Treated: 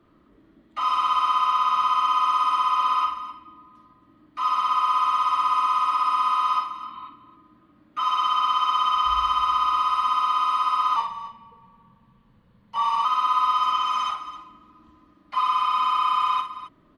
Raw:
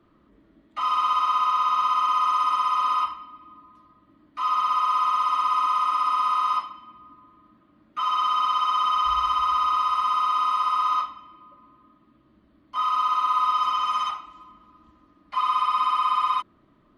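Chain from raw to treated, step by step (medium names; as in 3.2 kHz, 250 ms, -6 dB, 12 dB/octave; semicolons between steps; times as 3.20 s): 6.75–7.06 s: spectral replace 760–4600 Hz before; multi-tap echo 52/265 ms -7.5/-14.5 dB; 10.96–13.05 s: frequency shift -100 Hz; trim +1 dB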